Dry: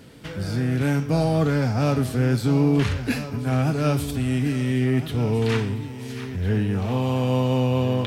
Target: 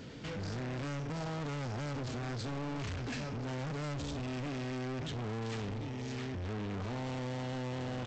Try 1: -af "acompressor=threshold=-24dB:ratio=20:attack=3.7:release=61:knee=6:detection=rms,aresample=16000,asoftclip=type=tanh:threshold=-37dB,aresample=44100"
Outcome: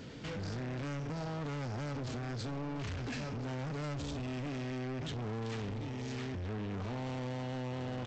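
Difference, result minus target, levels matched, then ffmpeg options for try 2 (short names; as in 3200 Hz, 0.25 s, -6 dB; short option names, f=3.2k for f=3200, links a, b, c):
compressor: peak gain reduction +6.5 dB
-af "acompressor=threshold=-16.5dB:ratio=20:attack=3.7:release=61:knee=6:detection=rms,aresample=16000,asoftclip=type=tanh:threshold=-37dB,aresample=44100"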